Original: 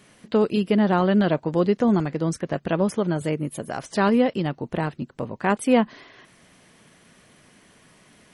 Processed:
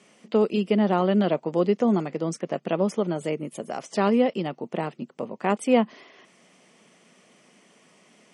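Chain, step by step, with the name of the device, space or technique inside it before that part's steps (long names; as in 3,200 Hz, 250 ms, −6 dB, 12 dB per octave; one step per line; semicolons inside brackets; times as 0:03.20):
television speaker (loudspeaker in its box 190–8,600 Hz, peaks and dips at 290 Hz −5 dB, 980 Hz −3 dB, 1,600 Hz −9 dB, 4,000 Hz −7 dB)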